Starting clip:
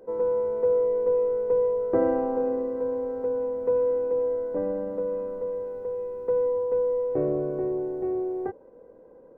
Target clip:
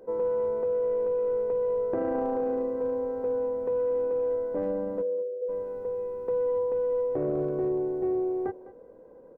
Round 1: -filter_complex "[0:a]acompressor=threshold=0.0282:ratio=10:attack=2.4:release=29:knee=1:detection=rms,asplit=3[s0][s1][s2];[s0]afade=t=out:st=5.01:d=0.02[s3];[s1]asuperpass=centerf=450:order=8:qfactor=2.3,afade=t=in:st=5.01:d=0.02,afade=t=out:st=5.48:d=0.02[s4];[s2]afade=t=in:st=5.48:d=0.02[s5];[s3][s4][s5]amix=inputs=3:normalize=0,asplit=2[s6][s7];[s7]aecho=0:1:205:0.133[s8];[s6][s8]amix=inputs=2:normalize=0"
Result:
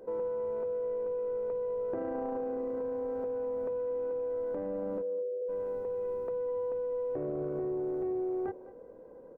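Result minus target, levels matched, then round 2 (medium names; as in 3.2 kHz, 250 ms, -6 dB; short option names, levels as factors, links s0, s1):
compression: peak gain reduction +6.5 dB
-filter_complex "[0:a]acompressor=threshold=0.0668:ratio=10:attack=2.4:release=29:knee=1:detection=rms,asplit=3[s0][s1][s2];[s0]afade=t=out:st=5.01:d=0.02[s3];[s1]asuperpass=centerf=450:order=8:qfactor=2.3,afade=t=in:st=5.01:d=0.02,afade=t=out:st=5.48:d=0.02[s4];[s2]afade=t=in:st=5.48:d=0.02[s5];[s3][s4][s5]amix=inputs=3:normalize=0,asplit=2[s6][s7];[s7]aecho=0:1:205:0.133[s8];[s6][s8]amix=inputs=2:normalize=0"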